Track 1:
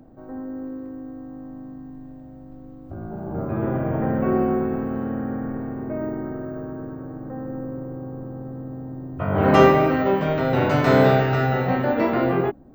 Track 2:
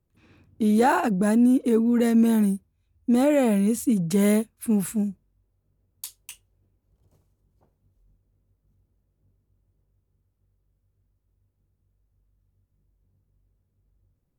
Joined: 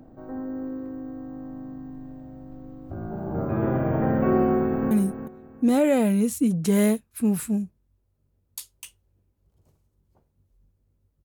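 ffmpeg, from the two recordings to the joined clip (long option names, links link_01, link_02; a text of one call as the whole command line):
ffmpeg -i cue0.wav -i cue1.wav -filter_complex "[0:a]apad=whole_dur=11.24,atrim=end=11.24,atrim=end=4.912[link_01];[1:a]atrim=start=2.368:end=8.7[link_02];[link_01][link_02]acrossfade=duration=0.004:curve1=hsin:curve2=hsin,asplit=2[link_03][link_04];[link_04]afade=type=in:start_time=4.46:duration=0.01,afade=type=out:start_time=4.91:duration=0.01,aecho=0:1:360|720|1080:0.316228|0.0790569|0.0197642[link_05];[link_03][link_05]amix=inputs=2:normalize=0" out.wav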